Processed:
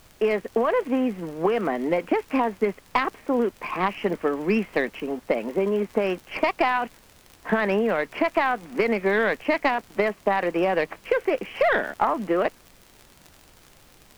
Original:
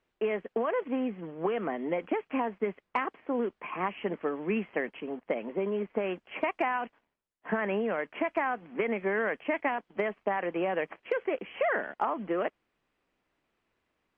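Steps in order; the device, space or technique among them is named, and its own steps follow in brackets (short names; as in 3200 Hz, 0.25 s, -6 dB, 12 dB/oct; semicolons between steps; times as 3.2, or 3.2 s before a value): record under a worn stylus (tracing distortion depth 0.052 ms; crackle 54/s -41 dBFS; pink noise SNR 29 dB); gain +7.5 dB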